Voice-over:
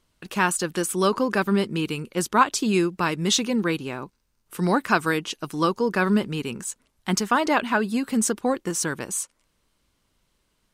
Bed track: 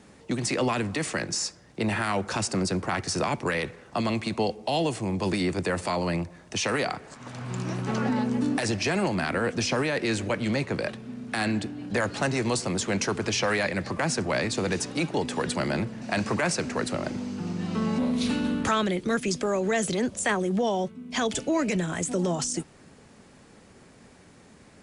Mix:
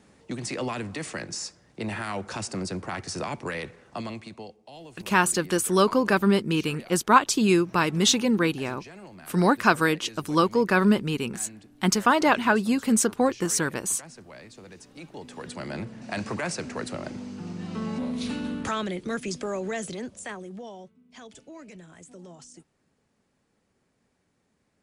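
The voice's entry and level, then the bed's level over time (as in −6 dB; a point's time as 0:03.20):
4.75 s, +1.0 dB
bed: 0:03.91 −5 dB
0:04.64 −19.5 dB
0:14.75 −19.5 dB
0:15.91 −4.5 dB
0:19.60 −4.5 dB
0:21.08 −19.5 dB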